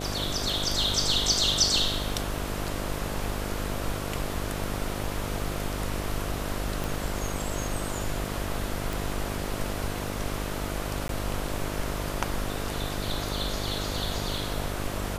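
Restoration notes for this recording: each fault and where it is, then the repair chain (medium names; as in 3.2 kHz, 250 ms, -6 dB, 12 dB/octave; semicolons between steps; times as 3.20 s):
buzz 50 Hz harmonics 14 -34 dBFS
6.84 s: pop
8.93 s: pop
11.08–11.09 s: dropout 12 ms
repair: de-click; de-hum 50 Hz, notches 14; interpolate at 11.08 s, 12 ms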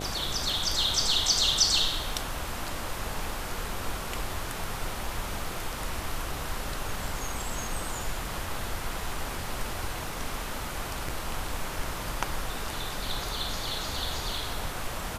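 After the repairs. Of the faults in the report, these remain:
nothing left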